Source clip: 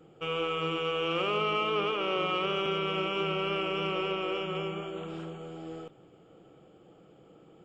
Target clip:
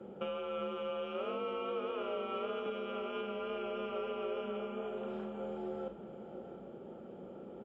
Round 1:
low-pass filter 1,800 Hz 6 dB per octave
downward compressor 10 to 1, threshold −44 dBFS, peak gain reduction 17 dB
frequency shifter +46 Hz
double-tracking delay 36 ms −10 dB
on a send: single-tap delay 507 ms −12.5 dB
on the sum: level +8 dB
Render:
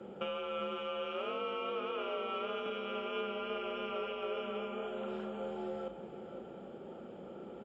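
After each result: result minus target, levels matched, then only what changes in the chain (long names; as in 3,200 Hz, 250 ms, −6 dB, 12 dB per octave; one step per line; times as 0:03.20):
echo 173 ms early; 2,000 Hz band +3.5 dB
change: single-tap delay 680 ms −12.5 dB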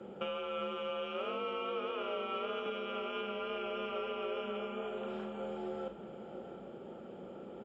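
2,000 Hz band +3.5 dB
change: low-pass filter 750 Hz 6 dB per octave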